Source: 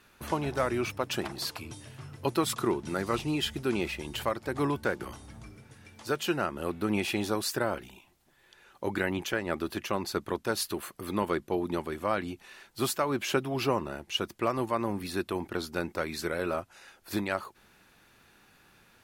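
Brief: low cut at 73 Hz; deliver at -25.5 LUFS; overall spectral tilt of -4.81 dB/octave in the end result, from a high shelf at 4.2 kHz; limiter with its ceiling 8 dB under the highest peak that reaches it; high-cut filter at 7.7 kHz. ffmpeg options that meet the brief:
-af "highpass=73,lowpass=7700,highshelf=f=4200:g=-3,volume=2.82,alimiter=limit=0.237:level=0:latency=1"

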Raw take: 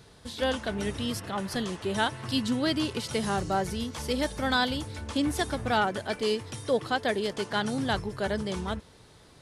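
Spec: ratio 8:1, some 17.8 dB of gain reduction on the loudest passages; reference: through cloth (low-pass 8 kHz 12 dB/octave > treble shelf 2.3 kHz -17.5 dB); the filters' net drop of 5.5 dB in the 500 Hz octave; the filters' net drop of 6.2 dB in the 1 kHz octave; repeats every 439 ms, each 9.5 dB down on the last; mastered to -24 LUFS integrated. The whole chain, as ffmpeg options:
-af "equalizer=f=500:t=o:g=-5,equalizer=f=1000:t=o:g=-3,acompressor=threshold=0.00708:ratio=8,lowpass=8000,highshelf=f=2300:g=-17.5,aecho=1:1:439|878|1317|1756:0.335|0.111|0.0365|0.012,volume=15.8"

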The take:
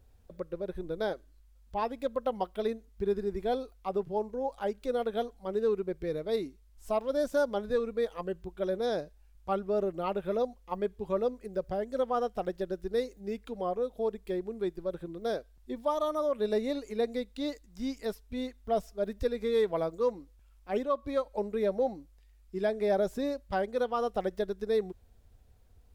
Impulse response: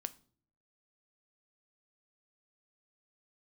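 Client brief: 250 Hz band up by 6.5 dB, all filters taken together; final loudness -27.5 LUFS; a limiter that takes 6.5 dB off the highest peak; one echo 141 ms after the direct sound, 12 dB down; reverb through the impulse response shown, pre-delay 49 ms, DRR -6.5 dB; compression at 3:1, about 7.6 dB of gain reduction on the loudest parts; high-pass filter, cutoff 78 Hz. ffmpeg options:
-filter_complex "[0:a]highpass=78,equalizer=f=250:t=o:g=8,acompressor=threshold=0.0251:ratio=3,alimiter=level_in=1.58:limit=0.0631:level=0:latency=1,volume=0.631,aecho=1:1:141:0.251,asplit=2[s0][s1];[1:a]atrim=start_sample=2205,adelay=49[s2];[s1][s2]afir=irnorm=-1:irlink=0,volume=2.66[s3];[s0][s3]amix=inputs=2:normalize=0,volume=1.41"

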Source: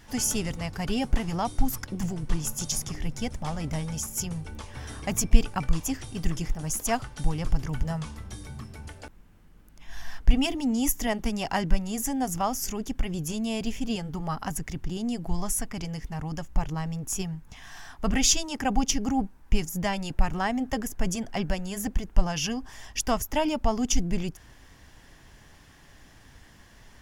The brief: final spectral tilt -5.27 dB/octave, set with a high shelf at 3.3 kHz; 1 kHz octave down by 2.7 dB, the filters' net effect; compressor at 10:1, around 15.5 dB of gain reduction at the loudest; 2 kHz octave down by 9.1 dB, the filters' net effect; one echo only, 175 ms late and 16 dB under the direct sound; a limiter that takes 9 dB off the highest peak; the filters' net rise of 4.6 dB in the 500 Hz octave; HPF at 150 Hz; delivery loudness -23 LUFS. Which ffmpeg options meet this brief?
-af "highpass=150,equalizer=f=500:t=o:g=9,equalizer=f=1000:t=o:g=-6.5,equalizer=f=2000:t=o:g=-8.5,highshelf=f=3300:g=-6,acompressor=threshold=0.0141:ratio=10,alimiter=level_in=2.82:limit=0.0631:level=0:latency=1,volume=0.355,aecho=1:1:175:0.158,volume=10"

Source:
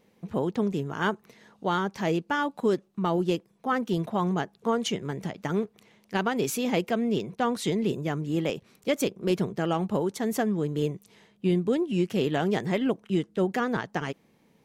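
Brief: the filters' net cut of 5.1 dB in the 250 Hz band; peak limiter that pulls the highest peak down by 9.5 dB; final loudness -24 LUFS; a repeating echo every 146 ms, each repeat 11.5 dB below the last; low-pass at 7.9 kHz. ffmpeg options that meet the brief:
-af "lowpass=7900,equalizer=f=250:t=o:g=-7.5,alimiter=limit=0.0668:level=0:latency=1,aecho=1:1:146|292|438:0.266|0.0718|0.0194,volume=2.99"

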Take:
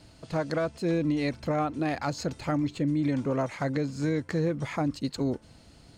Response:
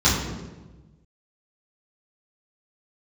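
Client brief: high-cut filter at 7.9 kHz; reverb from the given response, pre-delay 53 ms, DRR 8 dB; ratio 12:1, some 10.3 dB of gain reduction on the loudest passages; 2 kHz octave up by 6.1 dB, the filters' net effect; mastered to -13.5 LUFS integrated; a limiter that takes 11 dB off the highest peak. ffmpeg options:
-filter_complex "[0:a]lowpass=7900,equalizer=f=2000:t=o:g=7.5,acompressor=threshold=0.0224:ratio=12,alimiter=level_in=2.37:limit=0.0631:level=0:latency=1,volume=0.422,asplit=2[s0][s1];[1:a]atrim=start_sample=2205,adelay=53[s2];[s1][s2]afir=irnorm=-1:irlink=0,volume=0.0473[s3];[s0][s3]amix=inputs=2:normalize=0,volume=16.8"

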